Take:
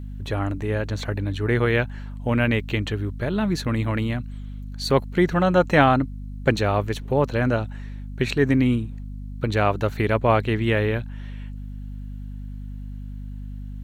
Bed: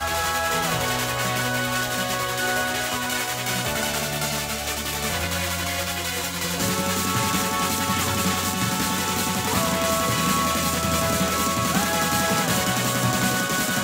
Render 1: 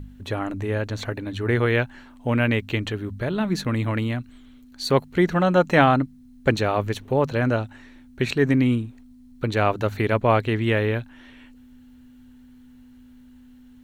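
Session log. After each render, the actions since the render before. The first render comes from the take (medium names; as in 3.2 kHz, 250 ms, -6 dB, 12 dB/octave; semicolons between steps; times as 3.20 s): de-hum 50 Hz, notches 4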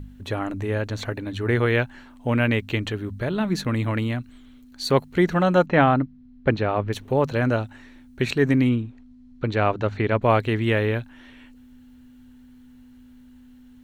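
5.66–6.93 s: distance through air 270 m; 8.69–10.22 s: distance through air 120 m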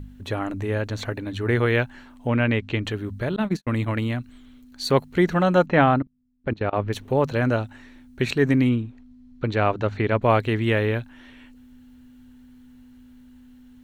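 2.27–2.85 s: distance through air 100 m; 3.36–4.03 s: gate -26 dBFS, range -58 dB; 5.98–6.73 s: level held to a coarse grid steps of 23 dB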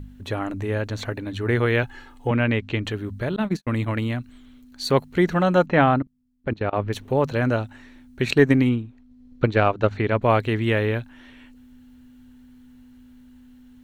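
1.83–2.31 s: comb 2.4 ms, depth 91%; 8.27–9.91 s: transient shaper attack +7 dB, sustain -4 dB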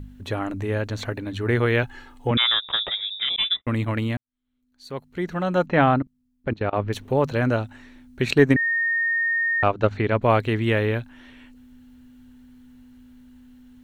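2.37–3.66 s: frequency inversion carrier 3.7 kHz; 4.17–5.88 s: fade in quadratic; 8.56–9.63 s: bleep 1.84 kHz -19.5 dBFS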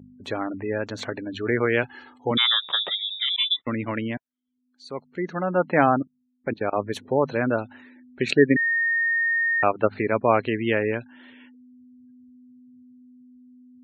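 high-pass 190 Hz 12 dB/octave; spectral gate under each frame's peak -25 dB strong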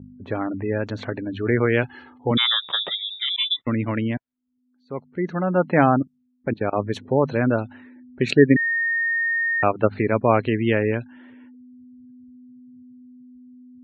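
level-controlled noise filter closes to 1.1 kHz, open at -20.5 dBFS; bass shelf 230 Hz +9.5 dB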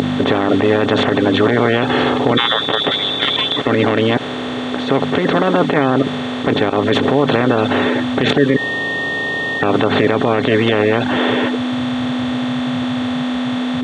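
spectral levelling over time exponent 0.2; peak limiter -2.5 dBFS, peak gain reduction 8.5 dB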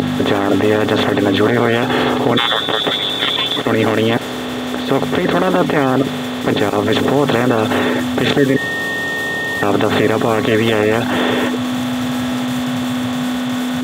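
add bed -9.5 dB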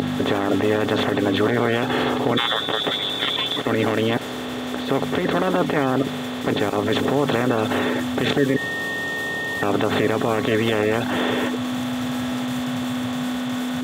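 trim -6 dB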